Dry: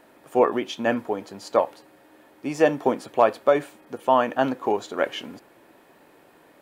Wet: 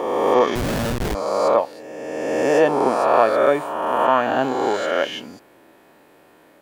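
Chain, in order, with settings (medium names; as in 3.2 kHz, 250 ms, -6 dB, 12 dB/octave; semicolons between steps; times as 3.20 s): reverse spectral sustain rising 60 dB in 1.98 s; 0.55–1.15 s: Schmitt trigger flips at -19.5 dBFS; trim -1 dB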